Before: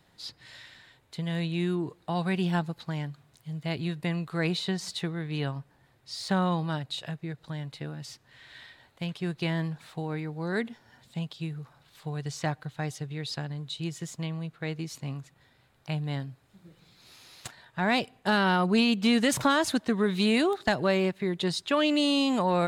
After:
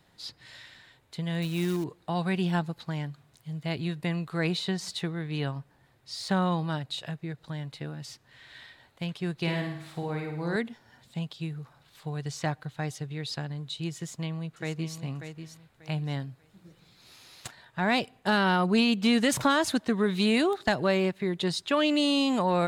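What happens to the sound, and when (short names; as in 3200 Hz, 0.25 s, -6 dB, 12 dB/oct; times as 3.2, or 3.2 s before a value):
1.42–1.84 short-mantissa float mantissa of 2-bit
9.39–10.56 flutter echo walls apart 9.1 m, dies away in 0.64 s
13.97–14.98 echo throw 0.59 s, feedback 25%, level -8.5 dB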